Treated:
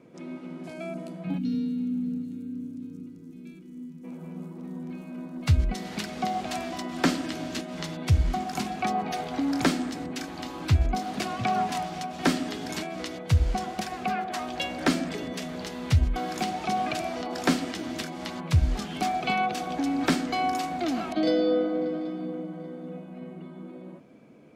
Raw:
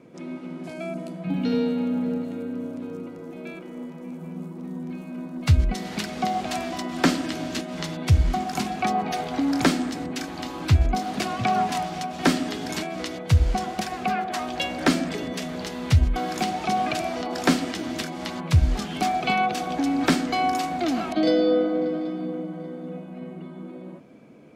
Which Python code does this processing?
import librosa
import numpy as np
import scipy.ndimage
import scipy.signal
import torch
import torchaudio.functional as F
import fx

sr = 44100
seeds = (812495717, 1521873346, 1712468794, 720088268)

y = fx.curve_eq(x, sr, hz=(270.0, 610.0, 6100.0), db=(0, -26, -3), at=(1.37, 4.03), fade=0.02)
y = F.gain(torch.from_numpy(y), -3.5).numpy()